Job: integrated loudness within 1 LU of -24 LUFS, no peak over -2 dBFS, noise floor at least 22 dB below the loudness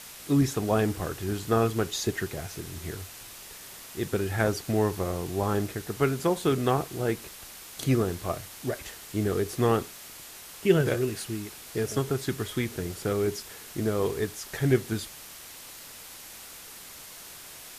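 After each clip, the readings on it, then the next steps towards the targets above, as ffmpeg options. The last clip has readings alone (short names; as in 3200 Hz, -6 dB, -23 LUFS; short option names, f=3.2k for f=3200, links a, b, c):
noise floor -45 dBFS; noise floor target -51 dBFS; loudness -28.5 LUFS; peak -9.0 dBFS; loudness target -24.0 LUFS
-> -af "afftdn=nr=6:nf=-45"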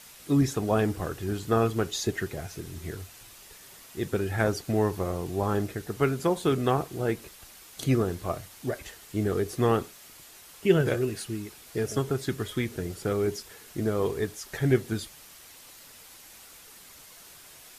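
noise floor -50 dBFS; noise floor target -51 dBFS
-> -af "afftdn=nr=6:nf=-50"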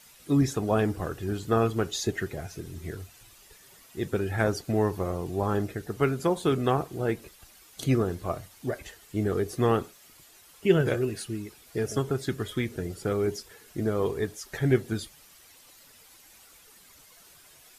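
noise floor -55 dBFS; loudness -29.0 LUFS; peak -9.5 dBFS; loudness target -24.0 LUFS
-> -af "volume=5dB"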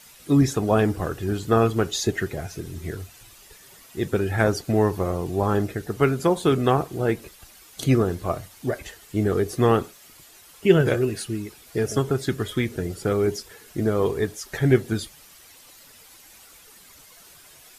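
loudness -24.0 LUFS; peak -4.5 dBFS; noise floor -50 dBFS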